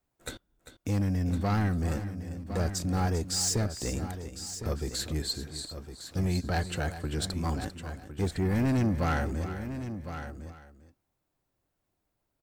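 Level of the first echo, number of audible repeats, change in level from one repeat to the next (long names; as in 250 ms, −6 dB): −12.5 dB, 3, repeats not evenly spaced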